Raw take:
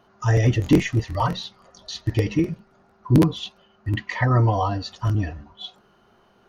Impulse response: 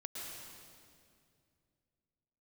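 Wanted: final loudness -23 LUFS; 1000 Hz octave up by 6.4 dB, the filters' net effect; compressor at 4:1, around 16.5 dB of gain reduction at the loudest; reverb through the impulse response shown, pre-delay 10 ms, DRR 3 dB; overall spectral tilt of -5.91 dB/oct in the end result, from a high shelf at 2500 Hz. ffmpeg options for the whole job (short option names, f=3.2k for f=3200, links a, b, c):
-filter_complex "[0:a]equalizer=f=1k:t=o:g=9,highshelf=f=2.5k:g=-7.5,acompressor=threshold=-31dB:ratio=4,asplit=2[a][b];[1:a]atrim=start_sample=2205,adelay=10[c];[b][c]afir=irnorm=-1:irlink=0,volume=-2dB[d];[a][d]amix=inputs=2:normalize=0,volume=9.5dB"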